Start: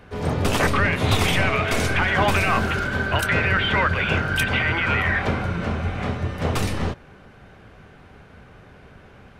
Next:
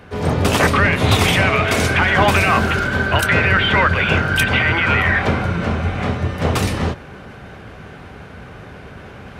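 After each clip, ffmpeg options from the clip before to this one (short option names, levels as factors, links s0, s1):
-af "highpass=47,areverse,acompressor=mode=upward:threshold=0.02:ratio=2.5,areverse,volume=1.88"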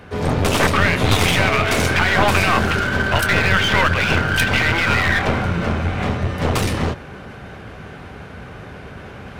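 -af "aeval=exprs='clip(val(0),-1,0.0944)':c=same,volume=1.12"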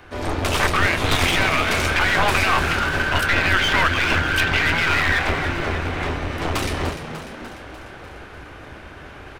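-filter_complex "[0:a]acrossover=split=100|570|5400[s0][s1][s2][s3];[s1]aeval=exprs='val(0)*sin(2*PI*170*n/s)':c=same[s4];[s3]alimiter=limit=0.106:level=0:latency=1:release=415[s5];[s0][s4][s2][s5]amix=inputs=4:normalize=0,asplit=8[s6][s7][s8][s9][s10][s11][s12][s13];[s7]adelay=297,afreqshift=77,volume=0.299[s14];[s8]adelay=594,afreqshift=154,volume=0.18[s15];[s9]adelay=891,afreqshift=231,volume=0.107[s16];[s10]adelay=1188,afreqshift=308,volume=0.0646[s17];[s11]adelay=1485,afreqshift=385,volume=0.0389[s18];[s12]adelay=1782,afreqshift=462,volume=0.0232[s19];[s13]adelay=2079,afreqshift=539,volume=0.014[s20];[s6][s14][s15][s16][s17][s18][s19][s20]amix=inputs=8:normalize=0,volume=0.841"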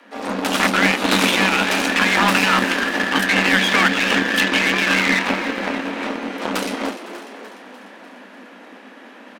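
-af "afreqshift=190,aecho=1:1:507:0.141,aeval=exprs='0.596*(cos(1*acos(clip(val(0)/0.596,-1,1)))-cos(1*PI/2))+0.0422*(cos(7*acos(clip(val(0)/0.596,-1,1)))-cos(7*PI/2))':c=same,volume=1.41"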